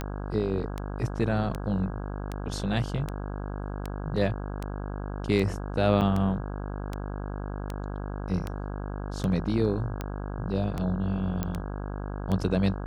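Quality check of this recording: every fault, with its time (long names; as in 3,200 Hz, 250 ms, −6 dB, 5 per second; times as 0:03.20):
mains buzz 50 Hz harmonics 33 −34 dBFS
scratch tick 78 rpm −18 dBFS
0:06.01–0:06.02: drop-out 6.4 ms
0:11.43: click −15 dBFS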